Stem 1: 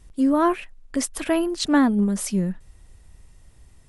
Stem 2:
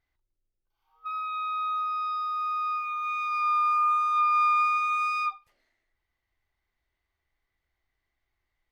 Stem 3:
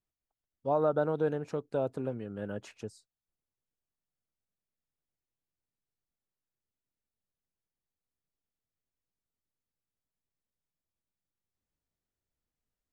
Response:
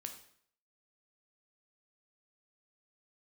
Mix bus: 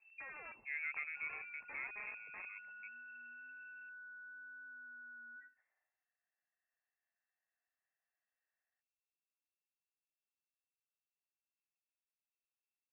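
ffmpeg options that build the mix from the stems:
-filter_complex "[0:a]volume=-18.5dB[link_01];[1:a]bandpass=frequency=920:width_type=q:width=5.5:csg=0,acompressor=threshold=-41dB:ratio=6,alimiter=level_in=24.5dB:limit=-24dB:level=0:latency=1:release=31,volume=-24.5dB,adelay=100,volume=1dB[link_02];[2:a]adynamicsmooth=sensitivity=7.5:basefreq=1500,volume=-15dB[link_03];[link_01][link_02]amix=inputs=2:normalize=0,aeval=exprs='(mod(53.1*val(0)+1,2)-1)/53.1':channel_layout=same,acompressor=threshold=-52dB:ratio=3,volume=0dB[link_04];[link_03][link_04]amix=inputs=2:normalize=0,lowpass=frequency=2300:width_type=q:width=0.5098,lowpass=frequency=2300:width_type=q:width=0.6013,lowpass=frequency=2300:width_type=q:width=0.9,lowpass=frequency=2300:width_type=q:width=2.563,afreqshift=-2700"

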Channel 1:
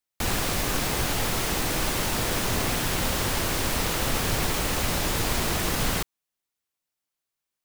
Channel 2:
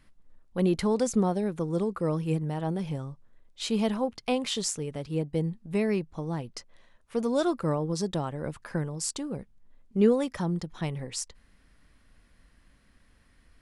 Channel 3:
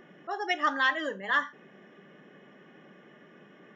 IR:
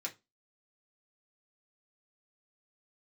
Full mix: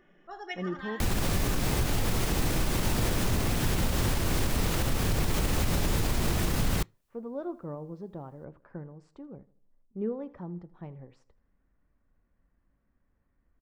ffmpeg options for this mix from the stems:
-filter_complex "[0:a]lowshelf=frequency=320:gain=11,adelay=800,volume=2dB,asplit=2[link_01][link_02];[link_02]volume=-21dB[link_03];[1:a]lowpass=1100,volume=-11dB,asplit=4[link_04][link_05][link_06][link_07];[link_05]volume=-11dB[link_08];[link_06]volume=-18dB[link_09];[2:a]volume=-11dB,asplit=3[link_10][link_11][link_12];[link_11]volume=-8dB[link_13];[link_12]volume=-9.5dB[link_14];[link_07]apad=whole_len=165512[link_15];[link_10][link_15]sidechaincompress=threshold=-45dB:ratio=8:attack=16:release=1040[link_16];[3:a]atrim=start_sample=2205[link_17];[link_03][link_08][link_13]amix=inputs=3:normalize=0[link_18];[link_18][link_17]afir=irnorm=-1:irlink=0[link_19];[link_09][link_14]amix=inputs=2:normalize=0,aecho=0:1:80|160|240|320|400:1|0.39|0.152|0.0593|0.0231[link_20];[link_01][link_04][link_16][link_19][link_20]amix=inputs=5:normalize=0,alimiter=limit=-17.5dB:level=0:latency=1:release=231"

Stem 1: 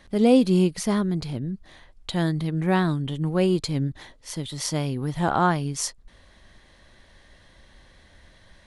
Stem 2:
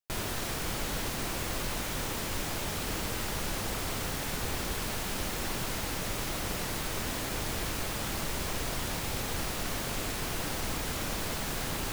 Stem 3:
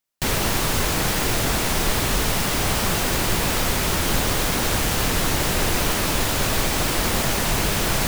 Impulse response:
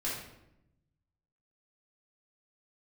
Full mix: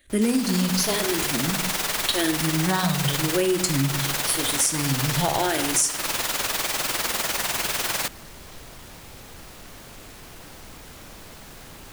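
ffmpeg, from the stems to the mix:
-filter_complex "[0:a]agate=range=-13dB:threshold=-49dB:ratio=16:detection=peak,crystalizer=i=4:c=0,asplit=2[link_01][link_02];[link_02]afreqshift=-0.9[link_03];[link_01][link_03]amix=inputs=2:normalize=1,volume=2.5dB,asplit=2[link_04][link_05];[link_05]volume=-8.5dB[link_06];[1:a]asoftclip=type=tanh:threshold=-26dB,volume=-8dB[link_07];[2:a]highpass=frequency=930:poles=1,tremolo=f=20:d=0.621,volume=1.5dB[link_08];[3:a]atrim=start_sample=2205[link_09];[link_06][link_09]afir=irnorm=-1:irlink=0[link_10];[link_04][link_07][link_08][link_10]amix=inputs=4:normalize=0,acompressor=threshold=-18dB:ratio=10"

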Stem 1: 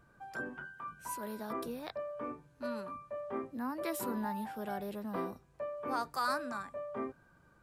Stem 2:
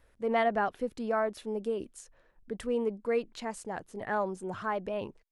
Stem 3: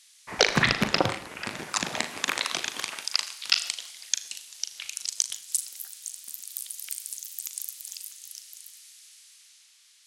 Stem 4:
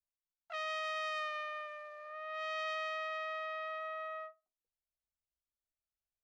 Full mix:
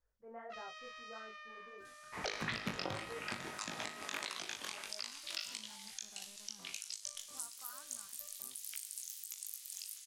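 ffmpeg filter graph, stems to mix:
ffmpeg -i stem1.wav -i stem2.wav -i stem3.wav -i stem4.wav -filter_complex "[0:a]equalizer=frequency=390:width_type=o:width=1.4:gain=-9,acrusher=bits=6:mix=0:aa=0.5,adelay=1450,volume=-15dB[link_01];[1:a]flanger=delay=20:depth=3.9:speed=0.5,lowpass=frequency=1800:width=0.5412,lowpass=frequency=1800:width=1.3066,equalizer=frequency=240:width_type=o:width=1.1:gain=-7,volume=-14.5dB,asplit=2[link_02][link_03];[2:a]adelay=1850,volume=-3.5dB[link_04];[3:a]highpass=1000,equalizer=frequency=5600:width=1.6:gain=7.5,volume=-0.5dB[link_05];[link_03]apad=whole_len=400308[link_06];[link_01][link_06]sidechaincompress=threshold=-53dB:ratio=8:attack=16:release=528[link_07];[link_07][link_05]amix=inputs=2:normalize=0,flanger=delay=7.6:depth=6.1:regen=75:speed=1.4:shape=sinusoidal,acompressor=threshold=-48dB:ratio=4,volume=0dB[link_08];[link_02][link_04]amix=inputs=2:normalize=0,flanger=delay=17.5:depth=4.6:speed=1.6,alimiter=limit=-22.5dB:level=0:latency=1:release=270,volume=0dB[link_09];[link_08][link_09]amix=inputs=2:normalize=0,alimiter=level_in=1.5dB:limit=-24dB:level=0:latency=1:release=262,volume=-1.5dB" out.wav

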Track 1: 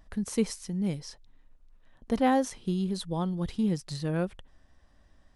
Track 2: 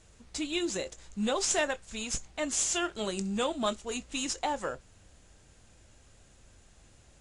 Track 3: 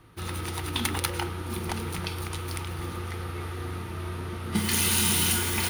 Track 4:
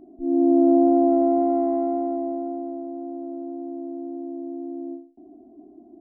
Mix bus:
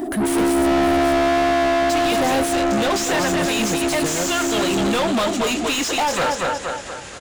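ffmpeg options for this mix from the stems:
ffmpeg -i stem1.wav -i stem2.wav -i stem3.wav -i stem4.wav -filter_complex "[0:a]aexciter=amount=4.3:drive=9.6:freq=7900,volume=-6.5dB,asplit=3[link_01][link_02][link_03];[link_01]atrim=end=2.53,asetpts=PTS-STARTPTS,afade=type=out:start_time=2.526:duration=0.004:curve=hsin[link_04];[link_02]atrim=start=2.53:end=3.04,asetpts=PTS-STARTPTS,volume=0[link_05];[link_03]atrim=start=3.04,asetpts=PTS-STARTPTS,afade=type=in:duration=0.004:curve=hsin[link_06];[link_04][link_05][link_06]concat=n=3:v=0:a=1[link_07];[1:a]agate=range=-33dB:threshold=-54dB:ratio=3:detection=peak,acompressor=threshold=-32dB:ratio=6,adelay=1550,volume=0dB,asplit=2[link_08][link_09];[link_09]volume=-8.5dB[link_10];[3:a]volume=-4dB[link_11];[link_10]aecho=0:1:234|468|702|936|1170:1|0.36|0.13|0.0467|0.0168[link_12];[link_07][link_08][link_11][link_12]amix=inputs=4:normalize=0,asplit=2[link_13][link_14];[link_14]highpass=frequency=720:poles=1,volume=40dB,asoftclip=type=tanh:threshold=-11.5dB[link_15];[link_13][link_15]amix=inputs=2:normalize=0,lowpass=frequency=3200:poles=1,volume=-6dB" out.wav

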